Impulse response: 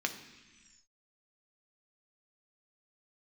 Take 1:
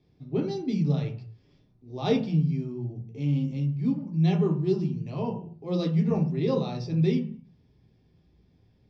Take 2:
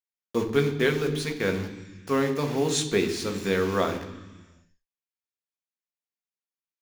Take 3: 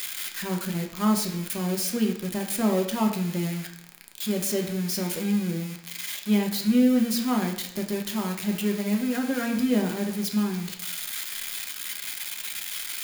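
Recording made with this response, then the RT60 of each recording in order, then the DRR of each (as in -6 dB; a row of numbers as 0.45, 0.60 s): 2; 0.45, 1.3, 0.75 s; -1.5, 4.5, 2.0 dB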